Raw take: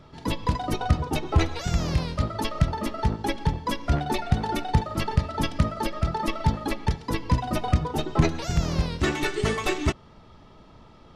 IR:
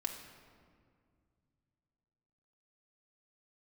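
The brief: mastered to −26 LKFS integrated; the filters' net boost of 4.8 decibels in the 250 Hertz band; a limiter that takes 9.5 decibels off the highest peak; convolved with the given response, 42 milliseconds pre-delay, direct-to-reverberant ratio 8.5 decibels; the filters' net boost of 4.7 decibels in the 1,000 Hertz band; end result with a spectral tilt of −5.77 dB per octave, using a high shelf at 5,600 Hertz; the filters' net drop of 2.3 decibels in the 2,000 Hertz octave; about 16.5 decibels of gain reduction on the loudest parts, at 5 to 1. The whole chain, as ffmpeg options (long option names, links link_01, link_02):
-filter_complex "[0:a]equalizer=frequency=250:width_type=o:gain=6.5,equalizer=frequency=1000:width_type=o:gain=6.5,equalizer=frequency=2000:width_type=o:gain=-4.5,highshelf=frequency=5600:gain=-4,acompressor=threshold=-32dB:ratio=5,alimiter=level_in=3.5dB:limit=-24dB:level=0:latency=1,volume=-3.5dB,asplit=2[link_01][link_02];[1:a]atrim=start_sample=2205,adelay=42[link_03];[link_02][link_03]afir=irnorm=-1:irlink=0,volume=-9.5dB[link_04];[link_01][link_04]amix=inputs=2:normalize=0,volume=12dB"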